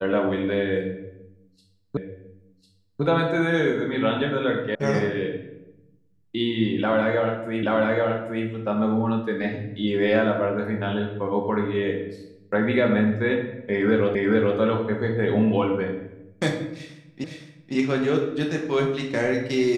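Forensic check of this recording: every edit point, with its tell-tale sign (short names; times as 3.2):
1.97 repeat of the last 1.05 s
4.75 sound cut off
7.63 repeat of the last 0.83 s
14.15 repeat of the last 0.43 s
17.24 repeat of the last 0.51 s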